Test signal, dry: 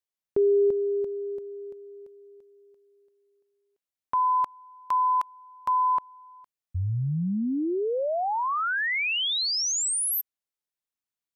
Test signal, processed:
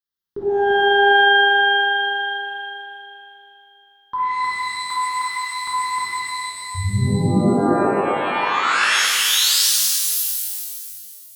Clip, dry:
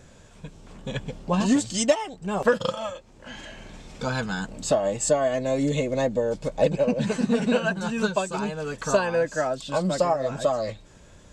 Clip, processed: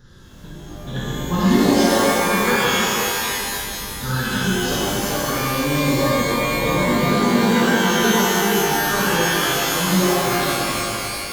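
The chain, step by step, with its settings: static phaser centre 2.4 kHz, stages 6; pitch-shifted reverb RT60 2.4 s, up +12 st, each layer -2 dB, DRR -8 dB

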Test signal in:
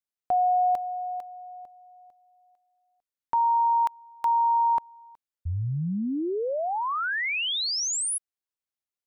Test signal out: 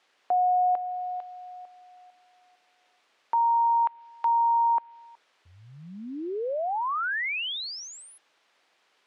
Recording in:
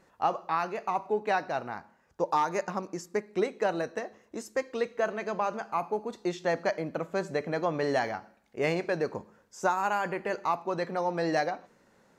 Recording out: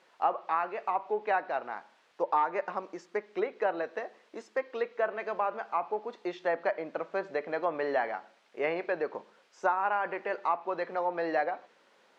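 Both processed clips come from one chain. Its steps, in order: word length cut 10-bit, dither triangular; band-pass 410–3200 Hz; low-pass that closes with the level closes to 2.5 kHz, closed at -25 dBFS

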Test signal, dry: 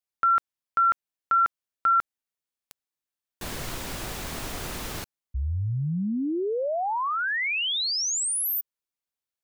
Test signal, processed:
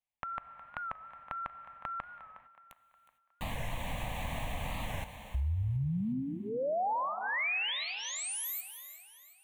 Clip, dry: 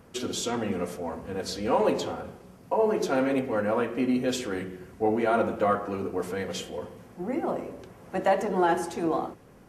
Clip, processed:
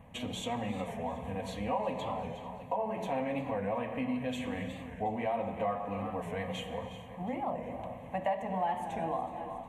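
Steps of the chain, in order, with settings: low-pass 2.7 kHz 6 dB/octave; static phaser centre 1.4 kHz, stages 6; on a send: thinning echo 363 ms, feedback 45%, high-pass 190 Hz, level -14.5 dB; on the sum: gated-style reverb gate 480 ms flat, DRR 12 dB; compression 2.5:1, threshold -36 dBFS; warped record 45 rpm, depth 100 cents; trim +3 dB

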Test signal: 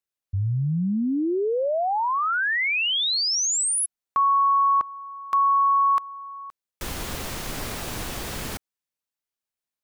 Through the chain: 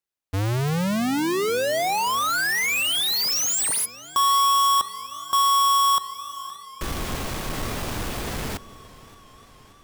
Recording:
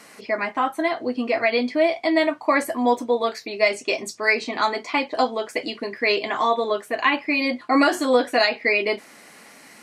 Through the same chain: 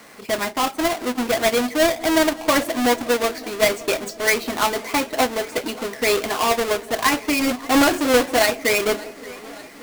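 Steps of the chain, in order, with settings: square wave that keeps the level; feedback echo behind a low-pass 177 ms, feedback 60%, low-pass 600 Hz, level -18 dB; modulated delay 577 ms, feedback 70%, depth 85 cents, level -21 dB; trim -2.5 dB

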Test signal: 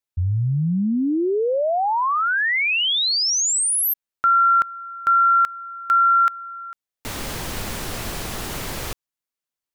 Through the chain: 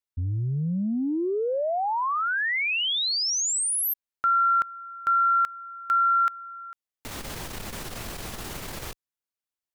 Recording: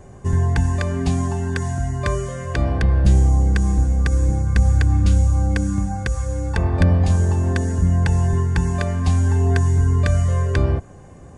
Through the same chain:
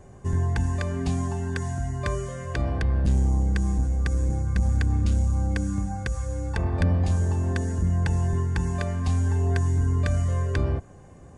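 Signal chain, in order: transformer saturation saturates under 120 Hz; trim -5.5 dB

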